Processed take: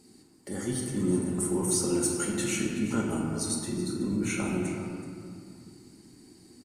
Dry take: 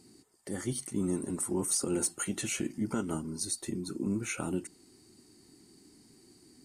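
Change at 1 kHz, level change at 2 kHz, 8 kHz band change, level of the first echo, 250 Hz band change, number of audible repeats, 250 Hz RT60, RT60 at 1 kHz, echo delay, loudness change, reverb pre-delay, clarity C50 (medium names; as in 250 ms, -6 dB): +5.0 dB, +4.5 dB, +2.5 dB, -13.0 dB, +5.0 dB, 1, 2.9 s, 2.3 s, 376 ms, +4.0 dB, 4 ms, 0.5 dB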